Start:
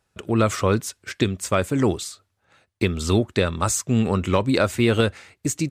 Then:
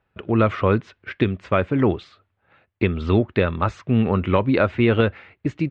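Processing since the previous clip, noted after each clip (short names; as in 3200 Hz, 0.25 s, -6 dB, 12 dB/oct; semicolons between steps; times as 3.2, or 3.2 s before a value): LPF 2900 Hz 24 dB/oct; gain +1.5 dB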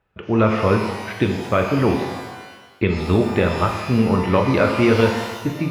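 shimmer reverb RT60 1.2 s, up +12 st, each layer -8 dB, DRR 2 dB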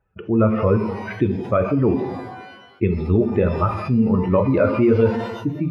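spectral contrast raised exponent 1.7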